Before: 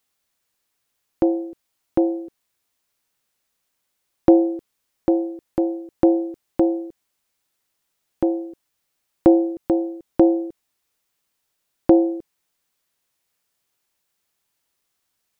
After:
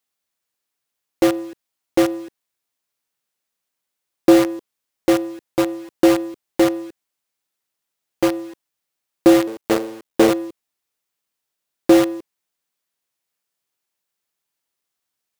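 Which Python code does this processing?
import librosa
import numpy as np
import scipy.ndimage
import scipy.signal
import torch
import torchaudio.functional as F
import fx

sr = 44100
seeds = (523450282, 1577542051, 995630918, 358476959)

p1 = fx.cycle_switch(x, sr, every=3, mode='muted', at=(9.47, 10.31))
p2 = fx.dynamic_eq(p1, sr, hz=450.0, q=1.6, threshold_db=-30.0, ratio=4.0, max_db=6)
p3 = fx.quant_companded(p2, sr, bits=2)
p4 = p2 + (p3 * librosa.db_to_amplitude(-7.5))
p5 = fx.low_shelf(p4, sr, hz=84.0, db=-9.5)
y = p5 * librosa.db_to_amplitude(-5.5)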